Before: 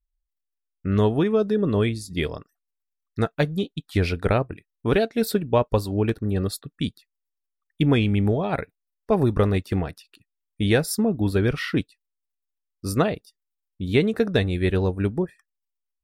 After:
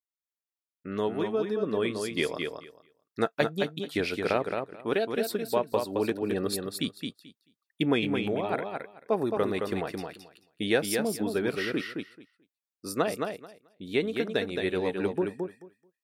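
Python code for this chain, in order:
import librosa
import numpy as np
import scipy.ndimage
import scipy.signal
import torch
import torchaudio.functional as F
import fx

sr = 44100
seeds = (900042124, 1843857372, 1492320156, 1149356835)

y = scipy.signal.sosfilt(scipy.signal.butter(2, 280.0, 'highpass', fs=sr, output='sos'), x)
y = fx.rider(y, sr, range_db=4, speed_s=0.5)
y = fx.echo_feedback(y, sr, ms=218, feedback_pct=16, wet_db=-5.0)
y = y * librosa.db_to_amplitude(-4.0)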